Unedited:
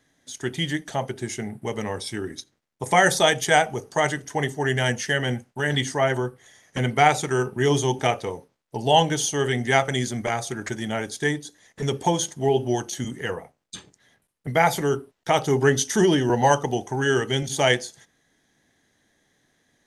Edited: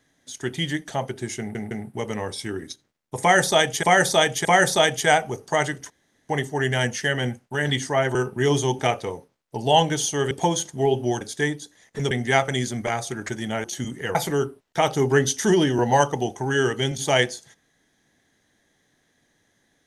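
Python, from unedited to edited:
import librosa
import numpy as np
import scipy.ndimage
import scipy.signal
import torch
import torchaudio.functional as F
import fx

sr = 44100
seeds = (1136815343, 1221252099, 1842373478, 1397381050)

y = fx.edit(x, sr, fx.stutter(start_s=1.39, slice_s=0.16, count=3),
    fx.repeat(start_s=2.89, length_s=0.62, count=3),
    fx.insert_room_tone(at_s=4.34, length_s=0.39),
    fx.cut(start_s=6.2, length_s=1.15),
    fx.swap(start_s=9.51, length_s=1.53, other_s=11.94, other_length_s=0.9),
    fx.cut(start_s=13.35, length_s=1.31), tone=tone)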